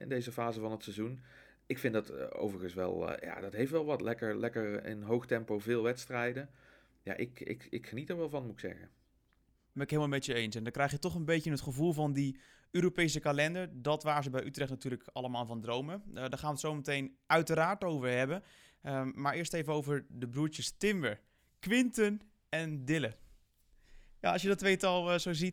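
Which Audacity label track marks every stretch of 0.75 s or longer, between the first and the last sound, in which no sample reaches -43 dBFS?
8.850000	9.760000	silence
23.120000	24.240000	silence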